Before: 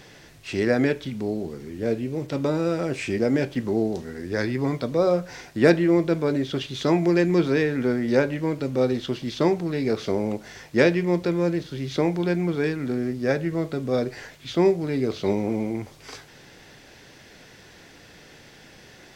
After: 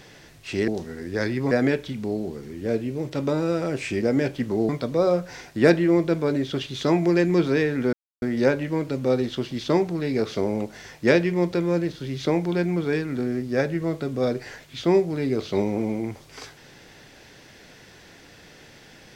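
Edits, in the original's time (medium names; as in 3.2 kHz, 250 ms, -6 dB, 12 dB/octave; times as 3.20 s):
3.86–4.69 s: move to 0.68 s
7.93 s: insert silence 0.29 s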